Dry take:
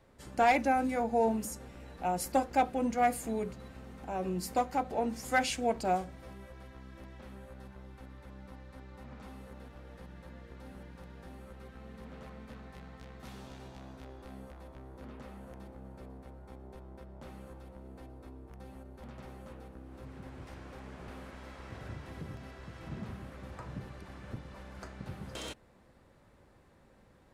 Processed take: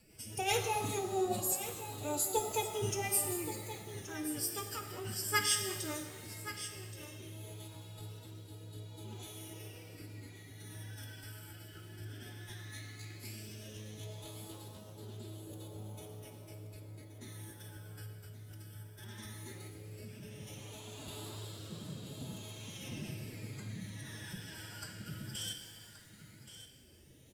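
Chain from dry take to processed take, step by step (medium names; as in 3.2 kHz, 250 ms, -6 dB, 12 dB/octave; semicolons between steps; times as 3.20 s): pre-emphasis filter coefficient 0.9; in parallel at +1 dB: compression 5:1, threshold -58 dBFS, peak gain reduction 21.5 dB; on the sum: phase shifter stages 12, 0.15 Hz, lowest notch 700–2000 Hz; formant-preserving pitch shift +8.5 st; rotary cabinet horn 5 Hz, later 0.6 Hz, at 6.57 s; delay 1125 ms -12.5 dB; pitch-shifted reverb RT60 1.4 s, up +7 st, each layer -8 dB, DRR 6 dB; trim +13.5 dB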